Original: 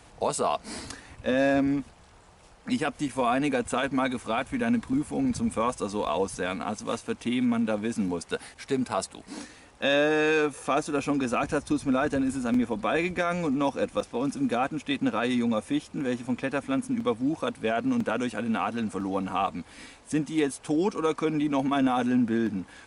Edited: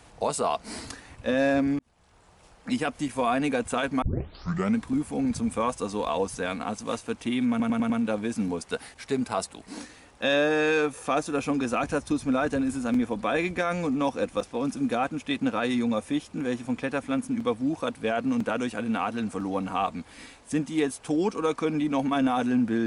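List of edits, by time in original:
1.79–2.69 s: fade in equal-power
4.02 s: tape start 0.75 s
7.50 s: stutter 0.10 s, 5 plays

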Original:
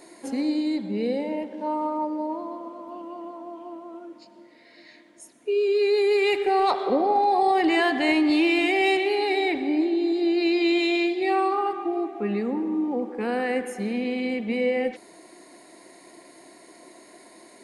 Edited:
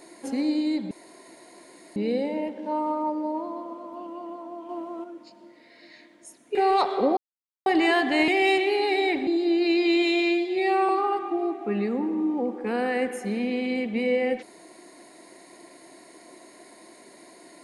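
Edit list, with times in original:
0.91 s: insert room tone 1.05 s
3.64–3.99 s: gain +4.5 dB
5.50–6.44 s: delete
7.06–7.55 s: mute
8.17–8.67 s: delete
9.66–10.03 s: delete
10.99–11.43 s: stretch 1.5×

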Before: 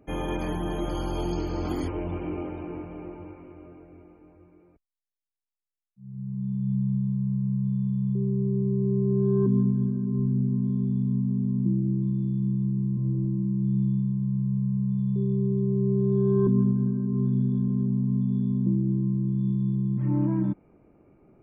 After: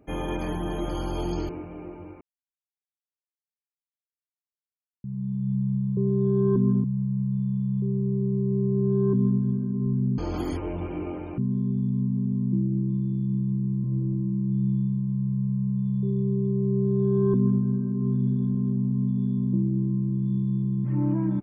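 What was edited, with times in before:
1.49–2.69 s: move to 10.51 s
3.41–6.24 s: mute
15.88–16.75 s: copy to 7.17 s

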